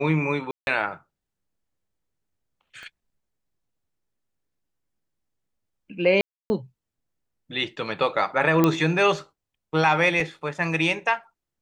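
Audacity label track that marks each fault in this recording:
0.510000	0.670000	dropout 161 ms
2.830000	2.830000	pop -30 dBFS
6.210000	6.500000	dropout 290 ms
8.640000	8.640000	pop -6 dBFS
10.200000	10.200000	dropout 2.6 ms

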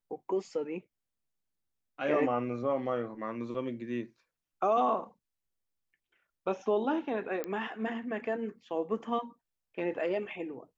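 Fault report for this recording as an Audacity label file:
7.440000	7.440000	pop -20 dBFS

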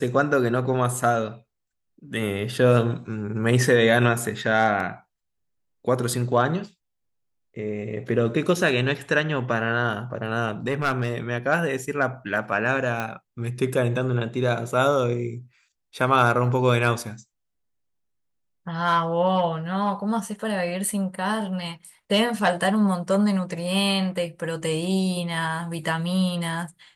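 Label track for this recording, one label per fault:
10.670000	11.180000	clipped -17.5 dBFS
13.000000	13.000000	pop -14 dBFS

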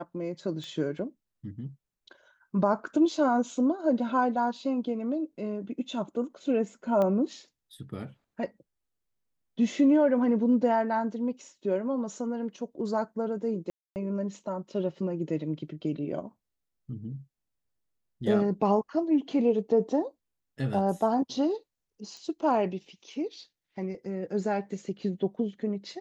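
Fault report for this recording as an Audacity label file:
0.640000	0.640000	pop -29 dBFS
7.020000	7.020000	pop -18 dBFS
13.700000	13.960000	dropout 259 ms
22.170000	22.170000	pop -34 dBFS

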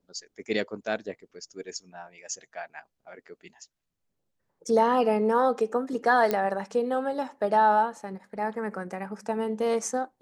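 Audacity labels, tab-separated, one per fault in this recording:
6.310000	6.310000	pop -12 dBFS

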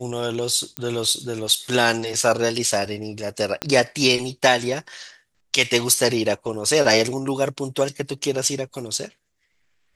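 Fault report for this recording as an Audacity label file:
0.770000	0.770000	pop -9 dBFS
3.620000	3.620000	pop -8 dBFS

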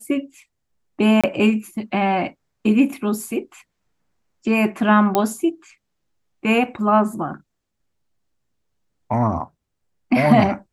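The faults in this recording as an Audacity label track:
1.210000	1.240000	dropout 26 ms
5.150000	5.150000	pop -5 dBFS

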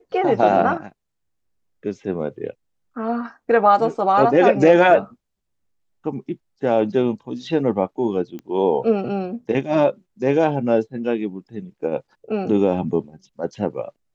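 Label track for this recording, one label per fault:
8.390000	8.390000	pop -23 dBFS

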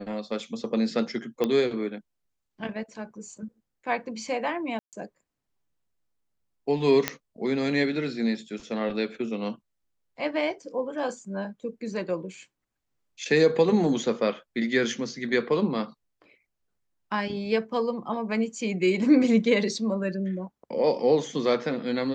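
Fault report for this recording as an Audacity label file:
1.440000	1.440000	pop -13 dBFS
4.790000	4.930000	dropout 138 ms
7.080000	7.080000	pop -7 dBFS

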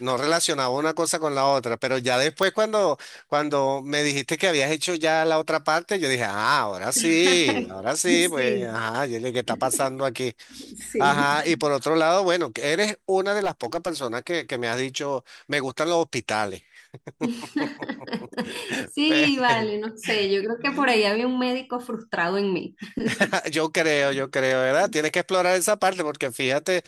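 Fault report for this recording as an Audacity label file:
2.430000	2.430000	pop -9 dBFS
13.390000	13.890000	clipped -19.5 dBFS

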